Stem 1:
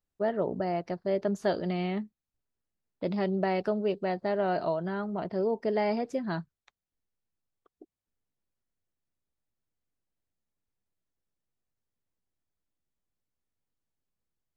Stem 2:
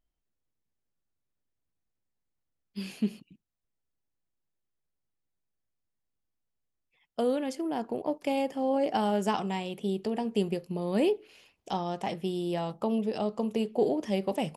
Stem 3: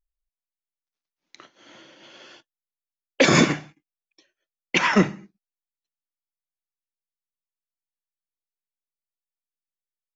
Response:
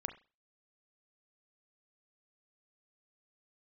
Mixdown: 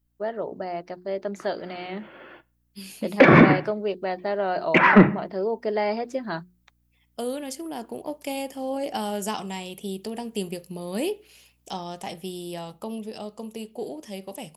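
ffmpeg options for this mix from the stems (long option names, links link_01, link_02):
-filter_complex "[0:a]lowshelf=frequency=210:gain=-11.5,bandreject=frequency=60:width_type=h:width=6,bandreject=frequency=120:width_type=h:width=6,bandreject=frequency=180:width_type=h:width=6,bandreject=frequency=240:width_type=h:width=6,bandreject=frequency=300:width_type=h:width=6,bandreject=frequency=360:width_type=h:width=6,volume=1dB[link_01];[1:a]aemphasis=mode=production:type=75fm,aeval=exprs='val(0)+0.000562*(sin(2*PI*60*n/s)+sin(2*PI*2*60*n/s)/2+sin(2*PI*3*60*n/s)/3+sin(2*PI*4*60*n/s)/4+sin(2*PI*5*60*n/s)/5)':channel_layout=same,volume=-9dB,asplit=2[link_02][link_03];[link_03]volume=-8.5dB[link_04];[2:a]lowpass=frequency=2200:width=0.5412,lowpass=frequency=2200:width=1.3066,asoftclip=type=tanh:threshold=-9.5dB,volume=1dB,asplit=2[link_05][link_06];[link_06]volume=-10.5dB[link_07];[3:a]atrim=start_sample=2205[link_08];[link_04][link_07]amix=inputs=2:normalize=0[link_09];[link_09][link_08]afir=irnorm=-1:irlink=0[link_10];[link_01][link_02][link_05][link_10]amix=inputs=4:normalize=0,dynaudnorm=framelen=360:gausssize=13:maxgain=5.5dB"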